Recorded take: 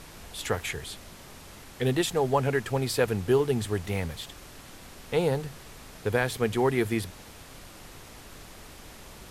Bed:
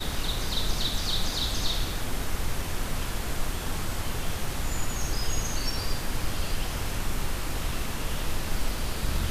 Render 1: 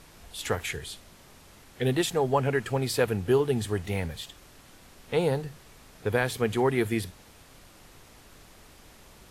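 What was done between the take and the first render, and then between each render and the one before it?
noise reduction from a noise print 6 dB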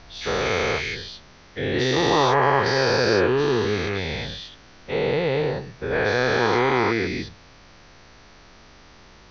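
every bin's largest magnitude spread in time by 480 ms
Chebyshev low-pass with heavy ripple 6,100 Hz, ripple 3 dB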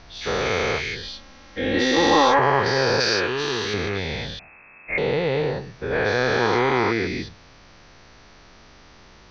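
0:01.03–0:02.39: comb filter 3.7 ms, depth 92%
0:03.00–0:03.74: tilt shelving filter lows −7.5 dB, about 1,400 Hz
0:04.39–0:04.98: voice inversion scrambler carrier 2,600 Hz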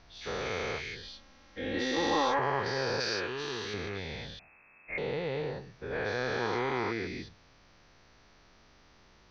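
level −11.5 dB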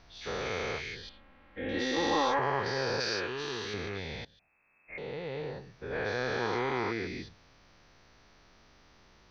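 0:01.09–0:01.69: low-pass filter 2,800 Hz 24 dB per octave
0:04.25–0:06.00: fade in linear, from −20.5 dB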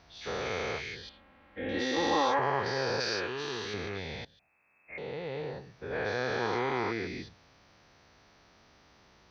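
high-pass filter 55 Hz
parametric band 720 Hz +2 dB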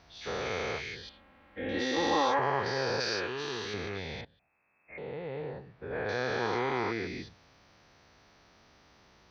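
0:04.21–0:06.09: high-frequency loss of the air 340 metres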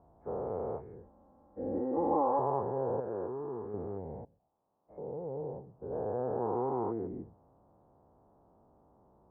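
Butterworth low-pass 960 Hz 36 dB per octave
low-shelf EQ 110 Hz −4.5 dB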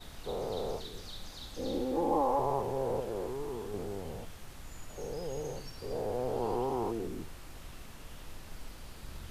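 mix in bed −17.5 dB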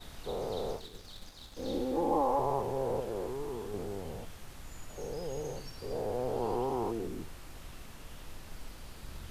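0:00.73–0:01.68: mu-law and A-law mismatch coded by A

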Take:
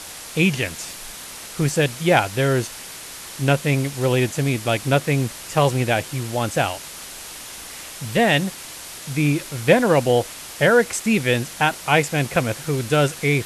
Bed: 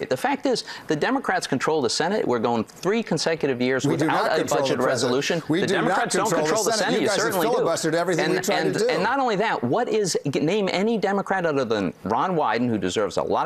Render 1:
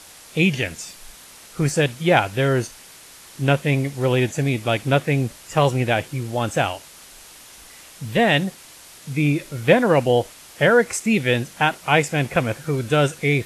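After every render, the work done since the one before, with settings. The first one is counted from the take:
noise reduction from a noise print 8 dB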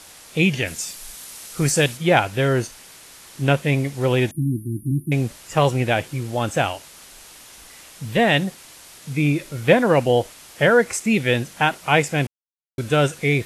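0:00.66–0:01.96: high-shelf EQ 5,500 Hz → 3,500 Hz +9 dB
0:04.31–0:05.12: linear-phase brick-wall band-stop 370–9,000 Hz
0:12.27–0:12.78: silence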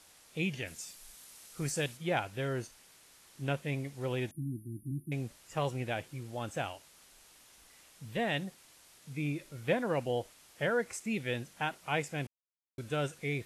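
level −15.5 dB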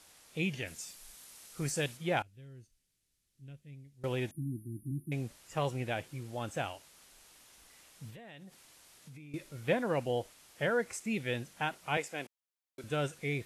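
0:02.22–0:04.04: guitar amp tone stack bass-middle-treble 10-0-1
0:08.10–0:09.34: downward compressor 12 to 1, threshold −47 dBFS
0:11.97–0:12.84: high-pass filter 330 Hz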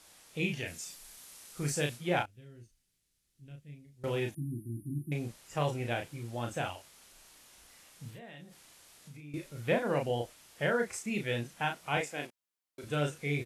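double-tracking delay 34 ms −4 dB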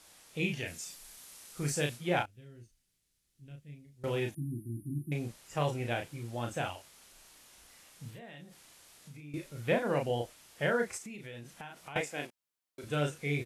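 0:10.97–0:11.96: downward compressor 12 to 1, threshold −41 dBFS

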